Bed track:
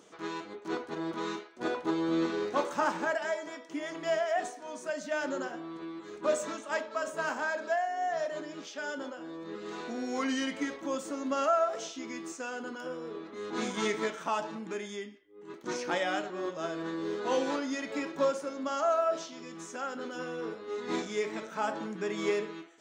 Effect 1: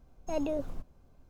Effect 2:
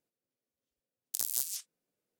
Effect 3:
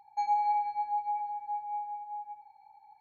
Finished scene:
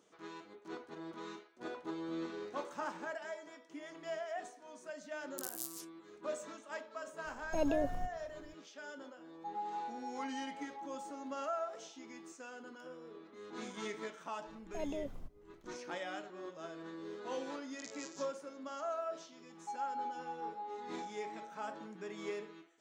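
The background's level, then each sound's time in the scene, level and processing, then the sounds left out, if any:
bed track −11.5 dB
0:04.24: mix in 2 −10.5 dB
0:07.25: mix in 1 −1 dB
0:09.27: mix in 3 −13 dB + flat-topped bell 2,800 Hz −16 dB 2.3 octaves
0:14.46: mix in 1 −8 dB
0:16.65: mix in 2 −11.5 dB + Butterworth low-pass 7,300 Hz 96 dB per octave
0:19.50: mix in 3 −12 dB + flat-topped bell 1,900 Hz −8 dB 1 octave

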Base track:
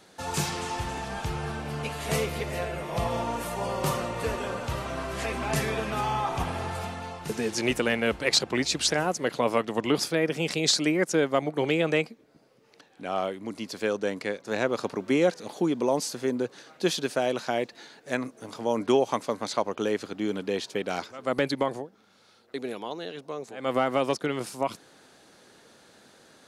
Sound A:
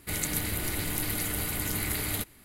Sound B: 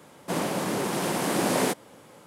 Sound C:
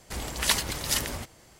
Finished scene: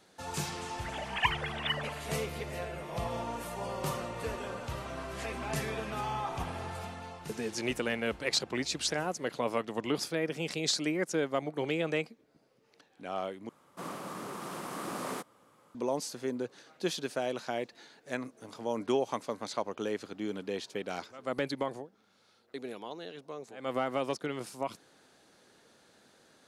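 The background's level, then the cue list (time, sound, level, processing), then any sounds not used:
base track −7 dB
0:00.74: mix in C −5.5 dB + three sine waves on the formant tracks
0:13.49: overwrite with B −14.5 dB + parametric band 1,200 Hz +11.5 dB 0.38 octaves
not used: A

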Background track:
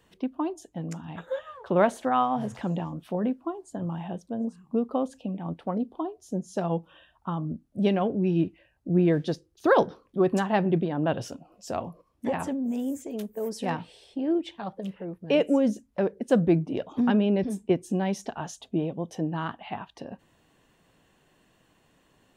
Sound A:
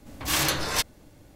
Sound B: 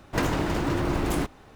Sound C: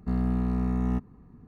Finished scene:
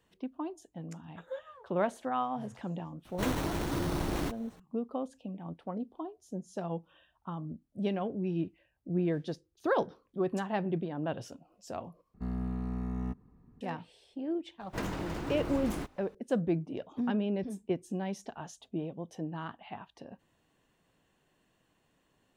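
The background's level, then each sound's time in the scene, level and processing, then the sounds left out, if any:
background track −8.5 dB
0:03.05: mix in B −7 dB + decimation without filtering 9×
0:12.14: overwrite with C −8.5 dB
0:14.60: mix in B −11 dB + one scale factor per block 7 bits
not used: A

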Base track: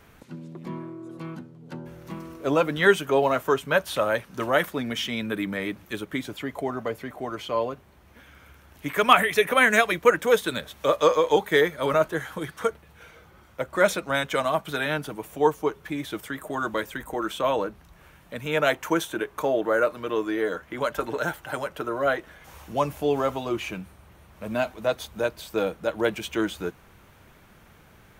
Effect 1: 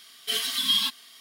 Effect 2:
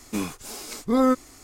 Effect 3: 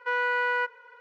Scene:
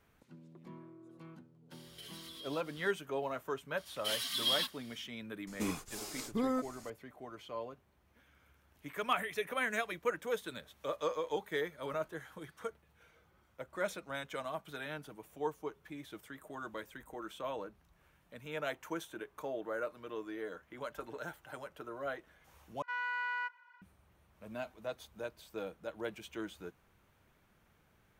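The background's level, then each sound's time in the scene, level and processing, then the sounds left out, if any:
base track −16 dB
0:01.71: mix in 1 −9 dB + downward compressor, threshold −40 dBFS
0:03.77: mix in 1 −9 dB
0:05.47: mix in 2 −7 dB + downward compressor, threshold −22 dBFS
0:22.82: overwrite with 3 −10 dB + Butterworth high-pass 740 Hz

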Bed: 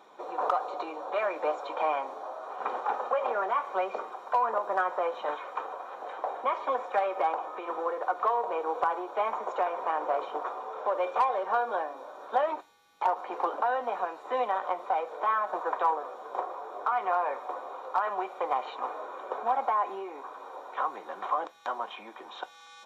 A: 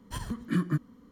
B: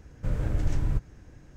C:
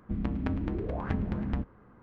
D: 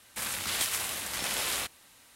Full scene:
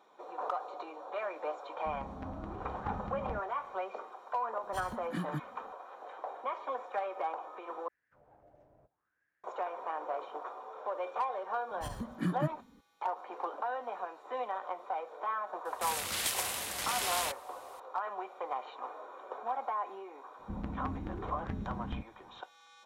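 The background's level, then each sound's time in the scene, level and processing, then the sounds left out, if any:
bed −8 dB
0:01.76: mix in C −16 dB + automatic gain control gain up to 5 dB
0:04.62: mix in A −5.5 dB + low-shelf EQ 390 Hz −6 dB
0:07.88: overwrite with B −10.5 dB + envelope filter 640–1,900 Hz, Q 6, down, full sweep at −20.5 dBFS
0:11.70: mix in A −5.5 dB
0:15.65: mix in D −3 dB
0:20.39: mix in C −8 dB

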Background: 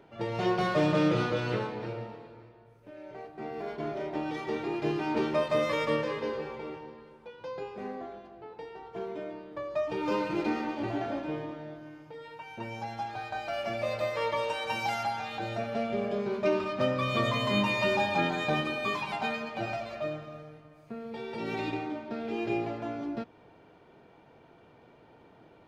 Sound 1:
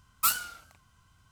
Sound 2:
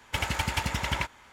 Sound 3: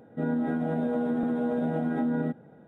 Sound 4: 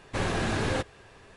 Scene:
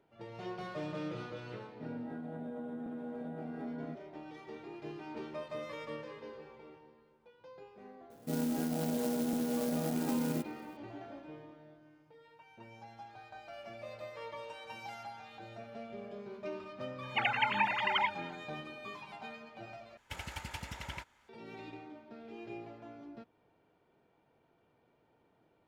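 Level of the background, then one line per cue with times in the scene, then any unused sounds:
background −14.5 dB
0:01.63: mix in 3 −14.5 dB
0:08.10: mix in 3 −6 dB + converter with an unsteady clock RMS 0.097 ms
0:17.03: mix in 2 −2 dB + three sine waves on the formant tracks
0:19.97: overwrite with 2 −14 dB + notch filter 1,100 Hz, Q 17
not used: 1, 4

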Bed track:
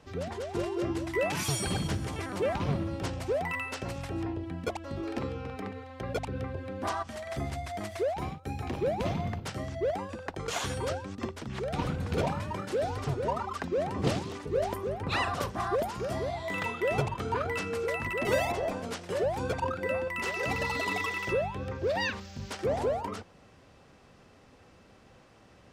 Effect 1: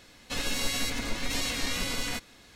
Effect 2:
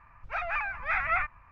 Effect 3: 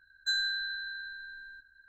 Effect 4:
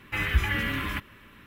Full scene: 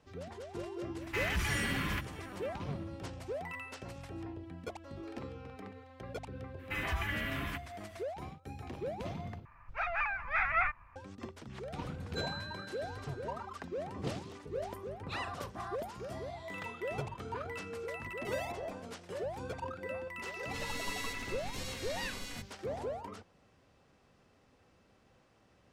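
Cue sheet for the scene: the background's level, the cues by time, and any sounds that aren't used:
bed track −9.5 dB
0:01.01: mix in 4 −3 dB + soft clipping −26 dBFS
0:06.58: mix in 4 −8 dB, fades 0.02 s + brickwall limiter −18 dBFS
0:09.45: overwrite with 2 −2.5 dB
0:11.89: mix in 3 −12 dB
0:20.23: mix in 1 −12 dB

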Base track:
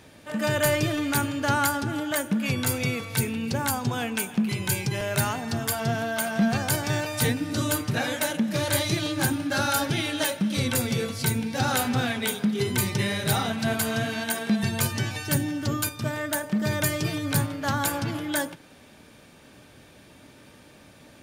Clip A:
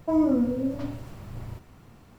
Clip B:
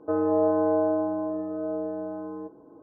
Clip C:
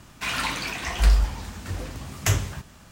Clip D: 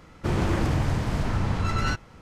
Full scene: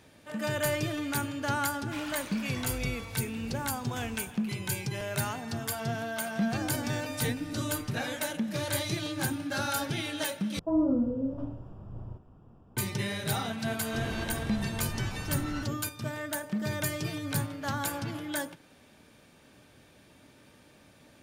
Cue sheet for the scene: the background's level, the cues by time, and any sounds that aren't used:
base track −6.5 dB
0:01.70: mix in C −13.5 dB + brickwall limiter −19 dBFS
0:06.45: mix in A −14.5 dB + phaser with its sweep stopped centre 2,500 Hz, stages 4
0:10.59: overwrite with A −3.5 dB + moving average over 21 samples
0:13.69: mix in D −12.5 dB
not used: B

